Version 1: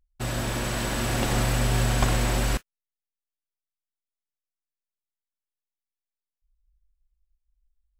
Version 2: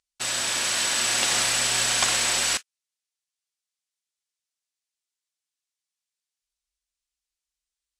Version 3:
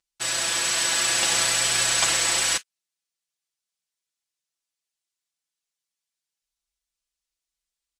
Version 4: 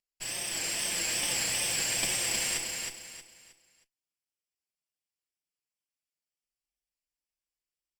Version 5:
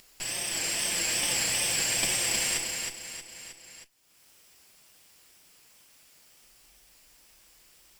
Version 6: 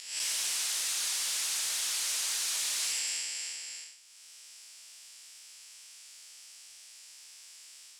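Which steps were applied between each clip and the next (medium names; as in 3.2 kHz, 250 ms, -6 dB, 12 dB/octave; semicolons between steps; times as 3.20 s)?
frequency weighting ITU-R 468
comb 6 ms, depth 94%; trim -2 dB
comb filter that takes the minimum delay 0.38 ms; wow and flutter 95 cents; on a send: feedback delay 315 ms, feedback 31%, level -4 dB; on the sum: trim -8.5 dB
upward compressor, threshold -36 dBFS; trim +2.5 dB
spectral blur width 214 ms; integer overflow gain 34.5 dB; frequency weighting ITU-R 468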